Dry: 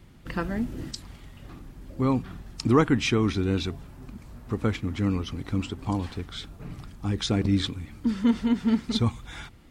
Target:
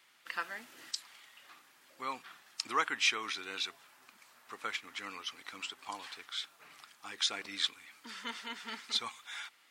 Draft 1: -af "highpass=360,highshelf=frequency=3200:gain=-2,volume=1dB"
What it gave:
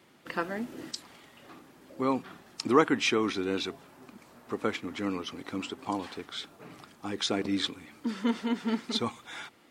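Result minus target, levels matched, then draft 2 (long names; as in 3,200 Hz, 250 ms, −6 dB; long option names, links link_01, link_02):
500 Hz band +12.5 dB
-af "highpass=1400,highshelf=frequency=3200:gain=-2,volume=1dB"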